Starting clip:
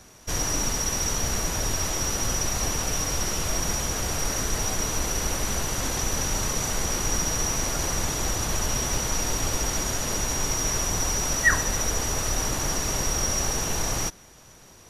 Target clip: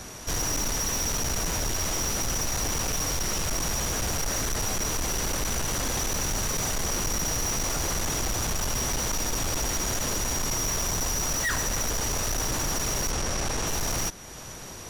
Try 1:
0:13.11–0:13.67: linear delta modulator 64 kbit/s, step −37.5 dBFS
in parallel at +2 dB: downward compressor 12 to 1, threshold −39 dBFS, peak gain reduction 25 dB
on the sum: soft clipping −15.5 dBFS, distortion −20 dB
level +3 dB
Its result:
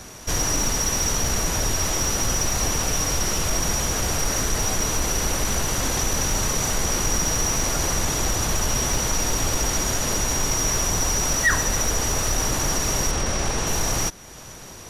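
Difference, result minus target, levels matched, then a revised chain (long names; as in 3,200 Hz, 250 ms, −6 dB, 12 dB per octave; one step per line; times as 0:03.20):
soft clipping: distortion −12 dB
0:13.11–0:13.67: linear delta modulator 64 kbit/s, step −37.5 dBFS
in parallel at +2 dB: downward compressor 12 to 1, threshold −39 dBFS, peak gain reduction 25 dB
on the sum: soft clipping −27.5 dBFS, distortion −8 dB
level +3 dB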